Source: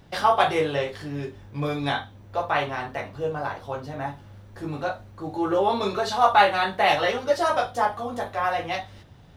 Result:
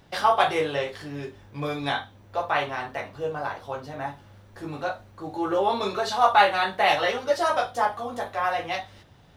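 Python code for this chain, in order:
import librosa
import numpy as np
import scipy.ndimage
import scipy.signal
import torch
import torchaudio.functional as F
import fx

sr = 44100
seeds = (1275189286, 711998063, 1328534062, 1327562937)

y = fx.low_shelf(x, sr, hz=300.0, db=-6.0)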